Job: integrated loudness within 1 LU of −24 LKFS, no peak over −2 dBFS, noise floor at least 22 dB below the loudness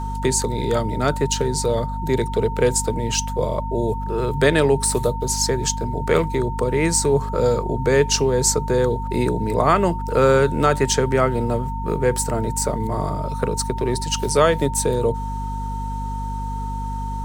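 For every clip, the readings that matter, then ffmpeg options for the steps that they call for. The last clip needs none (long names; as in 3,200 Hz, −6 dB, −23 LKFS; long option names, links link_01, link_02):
mains hum 50 Hz; hum harmonics up to 250 Hz; level of the hum −25 dBFS; interfering tone 910 Hz; level of the tone −29 dBFS; integrated loudness −20.5 LKFS; sample peak −2.5 dBFS; target loudness −24.0 LKFS
→ -af "bandreject=frequency=50:width_type=h:width=4,bandreject=frequency=100:width_type=h:width=4,bandreject=frequency=150:width_type=h:width=4,bandreject=frequency=200:width_type=h:width=4,bandreject=frequency=250:width_type=h:width=4"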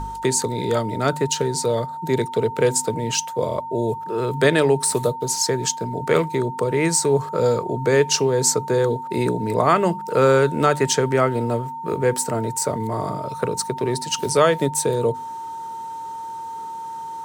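mains hum none found; interfering tone 910 Hz; level of the tone −29 dBFS
→ -af "bandreject=frequency=910:width=30"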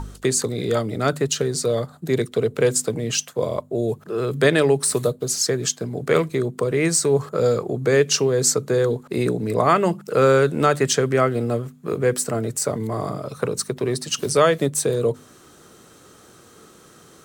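interfering tone none found; integrated loudness −21.0 LKFS; sample peak −3.5 dBFS; target loudness −24.0 LKFS
→ -af "volume=-3dB"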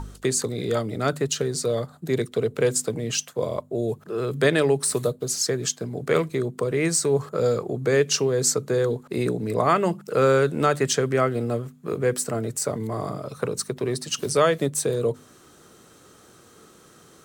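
integrated loudness −24.0 LKFS; sample peak −6.5 dBFS; background noise floor −52 dBFS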